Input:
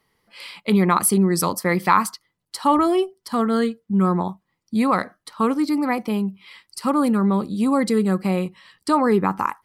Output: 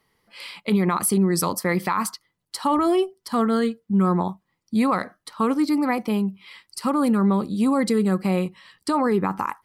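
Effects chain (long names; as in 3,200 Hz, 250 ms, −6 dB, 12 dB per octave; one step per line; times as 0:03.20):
brickwall limiter −12.5 dBFS, peak gain reduction 10 dB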